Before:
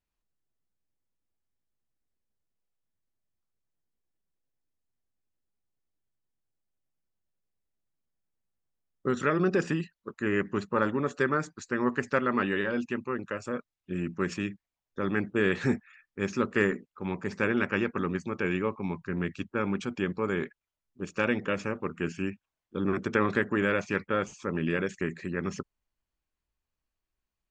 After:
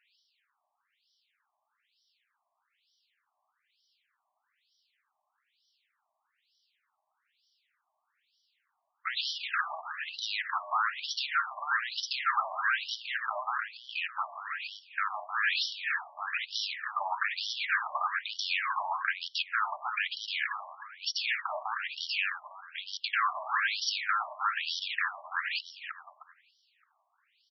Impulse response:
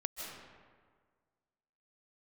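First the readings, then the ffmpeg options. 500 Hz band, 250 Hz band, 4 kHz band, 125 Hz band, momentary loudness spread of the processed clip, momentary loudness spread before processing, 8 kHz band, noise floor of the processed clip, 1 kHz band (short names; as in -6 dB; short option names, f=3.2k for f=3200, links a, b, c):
-19.5 dB, under -40 dB, +13.0 dB, under -40 dB, 8 LU, 9 LU, n/a, -82 dBFS, +3.5 dB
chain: -filter_complex "[0:a]asplit=2[a][b];[b]highpass=f=720:p=1,volume=30dB,asoftclip=type=tanh:threshold=-10.5dB[c];[a][c]amix=inputs=2:normalize=0,lowpass=f=3.2k:p=1,volume=-6dB,acompressor=threshold=-25dB:ratio=6,equalizer=f=6.1k:w=0.86:g=11.5,asplit=2[d][e];[e]adelay=308,lowpass=f=2.2k:p=1,volume=-5.5dB,asplit=2[f][g];[g]adelay=308,lowpass=f=2.2k:p=1,volume=0.38,asplit=2[h][i];[i]adelay=308,lowpass=f=2.2k:p=1,volume=0.38,asplit=2[j][k];[k]adelay=308,lowpass=f=2.2k:p=1,volume=0.38,asplit=2[l][m];[m]adelay=308,lowpass=f=2.2k:p=1,volume=0.38[n];[d][f][h][j][l][n]amix=inputs=6:normalize=0,asplit=2[o][p];[1:a]atrim=start_sample=2205,afade=t=out:st=0.38:d=0.01,atrim=end_sample=17199[q];[p][q]afir=irnorm=-1:irlink=0,volume=-16dB[r];[o][r]amix=inputs=2:normalize=0,afftfilt=real='re*between(b*sr/1024,820*pow(4200/820,0.5+0.5*sin(2*PI*1.1*pts/sr))/1.41,820*pow(4200/820,0.5+0.5*sin(2*PI*1.1*pts/sr))*1.41)':imag='im*between(b*sr/1024,820*pow(4200/820,0.5+0.5*sin(2*PI*1.1*pts/sr))/1.41,820*pow(4200/820,0.5+0.5*sin(2*PI*1.1*pts/sr))*1.41)':win_size=1024:overlap=0.75"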